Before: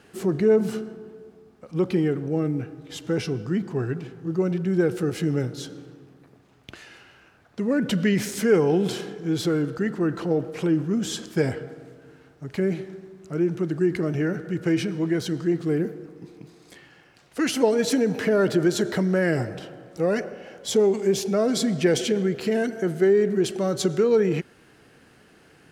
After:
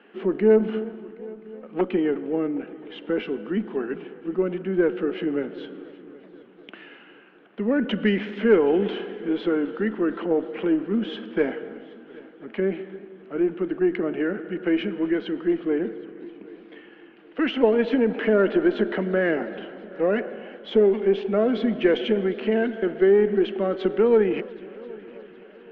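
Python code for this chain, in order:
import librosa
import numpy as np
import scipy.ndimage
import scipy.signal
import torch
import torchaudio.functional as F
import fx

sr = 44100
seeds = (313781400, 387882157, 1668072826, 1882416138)

y = fx.self_delay(x, sr, depth_ms=0.65, at=(0.81, 1.81))
y = scipy.signal.sosfilt(scipy.signal.cheby1(4, 1.0, [210.0, 3100.0], 'bandpass', fs=sr, output='sos'), y)
y = fx.cheby_harmonics(y, sr, harmonics=(2, 6, 7), levels_db=(-23, -39, -44), full_scale_db=-8.0)
y = fx.echo_heads(y, sr, ms=257, heads='first and third', feedback_pct=59, wet_db=-23.0)
y = fx.echo_warbled(y, sr, ms=352, feedback_pct=57, rate_hz=2.8, cents=114, wet_db=-24.0)
y = y * 10.0 ** (1.5 / 20.0)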